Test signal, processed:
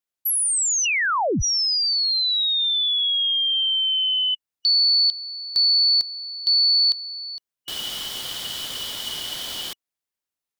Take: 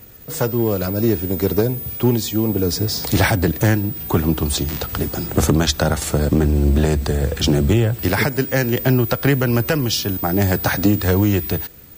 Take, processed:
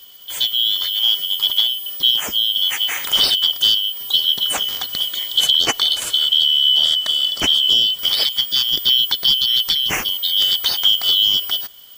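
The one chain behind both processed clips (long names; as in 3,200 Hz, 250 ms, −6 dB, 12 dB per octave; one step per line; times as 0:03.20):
band-splitting scrambler in four parts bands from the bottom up 3412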